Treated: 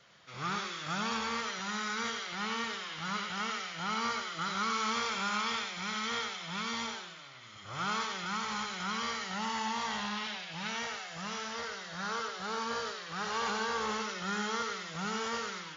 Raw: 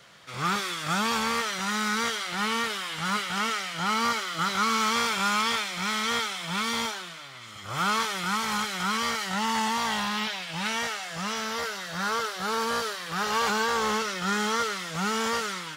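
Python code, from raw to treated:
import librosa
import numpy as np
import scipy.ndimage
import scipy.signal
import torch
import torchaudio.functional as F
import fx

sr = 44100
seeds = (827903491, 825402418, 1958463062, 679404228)

p1 = fx.brickwall_lowpass(x, sr, high_hz=7200.0)
p2 = p1 + fx.echo_single(p1, sr, ms=92, db=-6.0, dry=0)
y = F.gain(torch.from_numpy(p2), -8.5).numpy()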